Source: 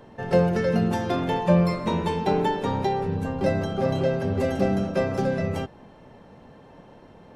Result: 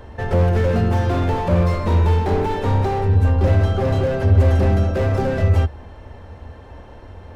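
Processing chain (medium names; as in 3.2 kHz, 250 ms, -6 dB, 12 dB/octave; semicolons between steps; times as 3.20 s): resonant low shelf 110 Hz +11 dB, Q 3; in parallel at -5.5 dB: saturation -19.5 dBFS, distortion -11 dB; on the sum: peaking EQ 1.6 kHz +2.5 dB 0.83 oct; slew-rate limiter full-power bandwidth 50 Hz; trim +2.5 dB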